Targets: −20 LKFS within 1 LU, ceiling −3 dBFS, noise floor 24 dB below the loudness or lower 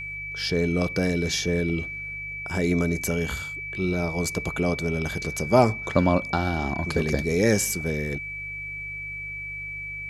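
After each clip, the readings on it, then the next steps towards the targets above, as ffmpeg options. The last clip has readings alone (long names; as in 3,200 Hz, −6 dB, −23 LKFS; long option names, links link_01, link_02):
mains hum 50 Hz; hum harmonics up to 150 Hz; level of the hum −43 dBFS; interfering tone 2,300 Hz; level of the tone −32 dBFS; integrated loudness −25.5 LKFS; sample peak −5.0 dBFS; target loudness −20.0 LKFS
→ -af "bandreject=frequency=50:width_type=h:width=4,bandreject=frequency=100:width_type=h:width=4,bandreject=frequency=150:width_type=h:width=4"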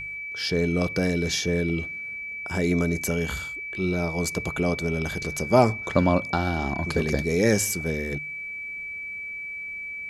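mains hum none found; interfering tone 2,300 Hz; level of the tone −32 dBFS
→ -af "bandreject=frequency=2300:width=30"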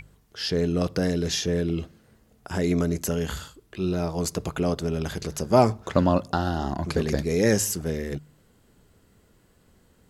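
interfering tone none found; integrated loudness −25.5 LKFS; sample peak −5.0 dBFS; target loudness −20.0 LKFS
→ -af "volume=5.5dB,alimiter=limit=-3dB:level=0:latency=1"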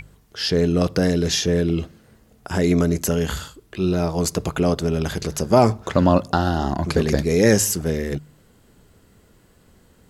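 integrated loudness −20.5 LKFS; sample peak −3.0 dBFS; background noise floor −56 dBFS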